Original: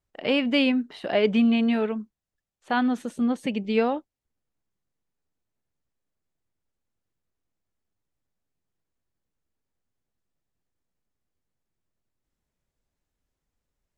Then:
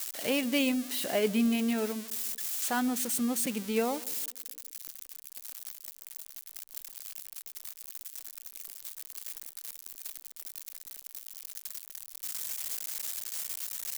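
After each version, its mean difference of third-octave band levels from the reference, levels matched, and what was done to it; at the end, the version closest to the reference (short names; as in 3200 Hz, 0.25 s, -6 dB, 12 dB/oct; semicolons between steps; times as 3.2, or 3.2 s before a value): 10.0 dB: switching spikes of -18.5 dBFS; on a send: narrowing echo 0.15 s, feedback 46%, band-pass 320 Hz, level -18 dB; on the sum: gain -6.5 dB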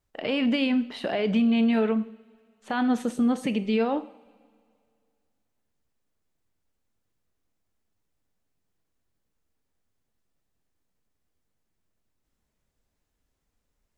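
3.0 dB: limiter -21.5 dBFS, peak gain reduction 11 dB; two-slope reverb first 0.54 s, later 2.3 s, from -19 dB, DRR 11 dB; gain +4 dB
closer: second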